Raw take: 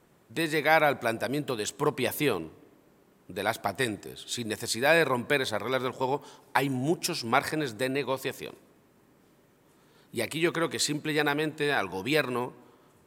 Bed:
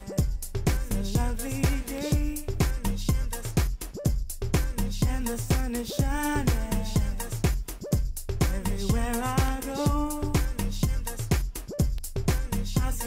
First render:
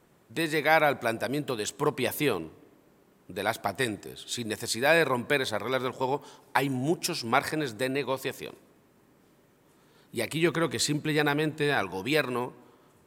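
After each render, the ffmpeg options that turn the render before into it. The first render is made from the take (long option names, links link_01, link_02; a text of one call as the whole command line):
ffmpeg -i in.wav -filter_complex "[0:a]asettb=1/sr,asplit=3[link_01][link_02][link_03];[link_01]atrim=end=10.324[link_04];[link_02]atrim=start=10.32:end=11.83,asetpts=PTS-STARTPTS,afade=type=in:duration=0.004:curve=qsin,afade=type=out:start_time=1.506:duration=0.004:curve=qsin,lowshelf=frequency=140:gain=10.5[link_05];[link_03]atrim=start=11.826[link_06];[link_04][link_05]acrossfade=duration=0.004:curve1=hsin:curve2=qsin[link_07];[link_07][link_06]acrossfade=duration=0.004:curve1=qsin:curve2=hsin" out.wav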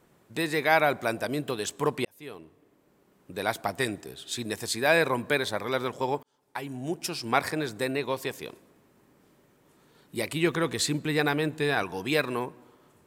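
ffmpeg -i in.wav -filter_complex "[0:a]asplit=3[link_01][link_02][link_03];[link_01]atrim=end=2.05,asetpts=PTS-STARTPTS,afade=type=out:start_time=2.046:duration=0.004:curve=hsin[link_04];[link_02]atrim=start=2.05:end=6.23,asetpts=PTS-STARTPTS,afade=type=in:duration=1.34,afade=type=out:start_time=4.176:duration=0.004:curve=hsin[link_05];[link_03]atrim=start=6.23,asetpts=PTS-STARTPTS,afade=type=in:duration=1.14[link_06];[link_04][link_05][link_06]concat=n=3:v=0:a=1" out.wav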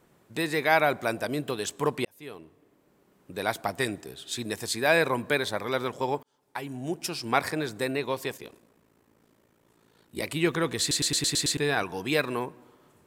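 ffmpeg -i in.wav -filter_complex "[0:a]asplit=3[link_01][link_02][link_03];[link_01]afade=type=out:start_time=8.37:duration=0.02[link_04];[link_02]aeval=exprs='val(0)*sin(2*PI*28*n/s)':channel_layout=same,afade=type=in:start_time=8.37:duration=0.02,afade=type=out:start_time=10.21:duration=0.02[link_05];[link_03]afade=type=in:start_time=10.21:duration=0.02[link_06];[link_04][link_05][link_06]amix=inputs=3:normalize=0,asplit=8[link_07][link_08][link_09][link_10][link_11][link_12][link_13][link_14];[link_07]atrim=end=10.912[link_15];[link_08]atrim=start=10.798:end=10.912[link_16];[link_09]atrim=start=10.798:end=10.912[link_17];[link_10]atrim=start=10.798:end=10.912[link_18];[link_11]atrim=start=10.798:end=10.912[link_19];[link_12]atrim=start=10.798:end=10.912[link_20];[link_13]atrim=start=10.798:end=10.912[link_21];[link_14]atrim=start=11.568[link_22];[link_15][link_16]acrossfade=duration=0.004:curve1=hsin:curve2=hsin[link_23];[link_23][link_17]acrossfade=duration=0.004:curve1=hsin:curve2=hsin[link_24];[link_24][link_18]acrossfade=duration=0.004:curve1=hsin:curve2=hsin[link_25];[link_25][link_19]acrossfade=duration=0.004:curve1=hsin:curve2=hsin[link_26];[link_26][link_20]acrossfade=duration=0.004:curve1=hsin:curve2=hsin[link_27];[link_27][link_21]acrossfade=duration=0.004:curve1=hsin:curve2=hsin[link_28];[link_28][link_22]acrossfade=duration=0.004:curve1=hsin:curve2=hsin" out.wav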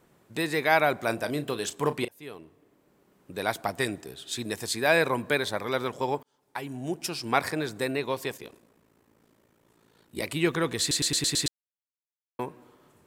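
ffmpeg -i in.wav -filter_complex "[0:a]asettb=1/sr,asplit=3[link_01][link_02][link_03];[link_01]atrim=end=1.044[link_04];[link_02]atrim=start=1.04:end=2.18,asetpts=PTS-STARTPTS,afade=type=in:duration=0.004:curve=qsin,afade=type=out:start_time=1.136:duration=0.004:curve=qsin,asplit=2[link_05][link_06];[link_06]adelay=35,volume=-12.5dB[link_07];[link_05][link_07]amix=inputs=2:normalize=0,atrim=end_sample=50274[link_08];[link_03]atrim=start=2.176[link_09];[link_04][link_08]acrossfade=duration=0.004:curve1=hsin:curve2=qsin[link_10];[link_10][link_09]acrossfade=duration=0.004:curve1=qsin:curve2=hsin,asplit=3[link_11][link_12][link_13];[link_11]atrim=end=11.48,asetpts=PTS-STARTPTS,afade=type=out:start_time=11.476:duration=0.004:curve=hsin[link_14];[link_12]atrim=start=11.48:end=12.39,asetpts=PTS-STARTPTS,volume=0[link_15];[link_13]atrim=start=12.39,asetpts=PTS-STARTPTS,afade=type=in:duration=0.004:curve=hsin[link_16];[link_14][link_15][link_16]concat=n=3:v=0:a=1" out.wav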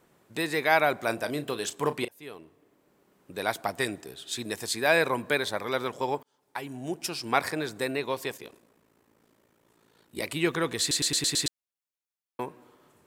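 ffmpeg -i in.wav -af "lowshelf=frequency=210:gain=-5" out.wav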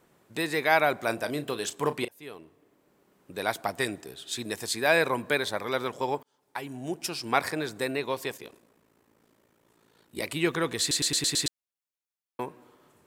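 ffmpeg -i in.wav -af anull out.wav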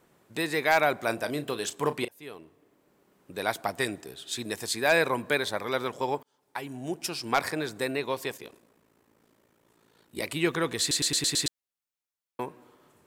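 ffmpeg -i in.wav -af "aeval=exprs='0.299*(abs(mod(val(0)/0.299+3,4)-2)-1)':channel_layout=same" out.wav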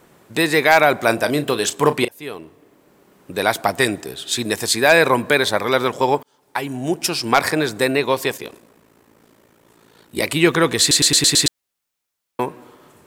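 ffmpeg -i in.wav -af "volume=12dB,alimiter=limit=-1dB:level=0:latency=1" out.wav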